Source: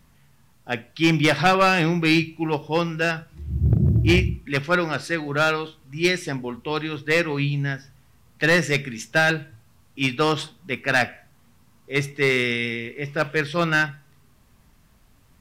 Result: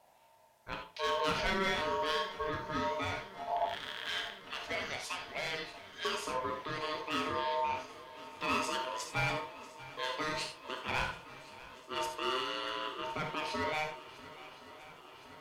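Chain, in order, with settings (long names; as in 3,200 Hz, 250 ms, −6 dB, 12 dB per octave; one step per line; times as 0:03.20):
loose part that buzzes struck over −17 dBFS, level −20 dBFS
0:03.66–0:06.05: high-pass filter 1,300 Hz 12 dB per octave
brickwall limiter −20 dBFS, peak gain reduction 10.5 dB
flanger 1.3 Hz, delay 6.8 ms, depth 9 ms, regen +80%
harmonic generator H 7 −35 dB, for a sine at −21.5 dBFS
ring modulation 770 Hz
feedback echo with a long and a short gap by turns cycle 1,065 ms, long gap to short 1.5 to 1, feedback 70%, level −18.5 dB
reverb whose tail is shaped and stops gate 110 ms flat, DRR 3 dB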